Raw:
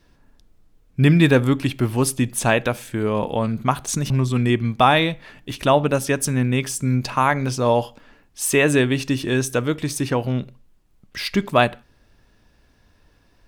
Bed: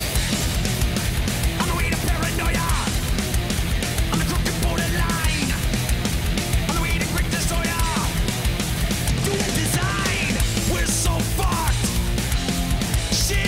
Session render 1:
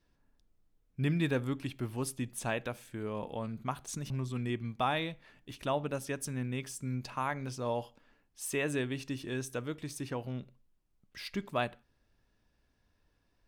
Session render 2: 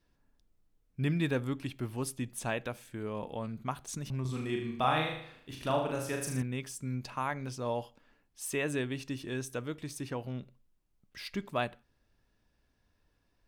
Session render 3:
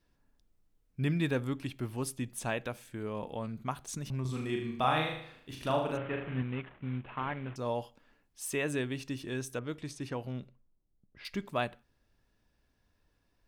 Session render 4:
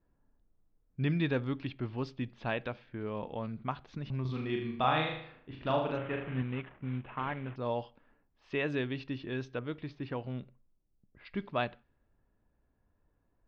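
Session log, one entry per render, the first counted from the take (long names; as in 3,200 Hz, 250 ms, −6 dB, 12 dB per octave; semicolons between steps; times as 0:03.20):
level −16 dB
0:04.21–0:06.42: flutter between parallel walls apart 6.6 metres, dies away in 0.64 s
0:05.97–0:07.56: variable-slope delta modulation 16 kbit/s; 0:09.59–0:11.25: low-pass that shuts in the quiet parts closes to 480 Hz, open at −35 dBFS
low-pass that shuts in the quiet parts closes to 1,200 Hz, open at −27.5 dBFS; Butterworth low-pass 4,800 Hz 36 dB per octave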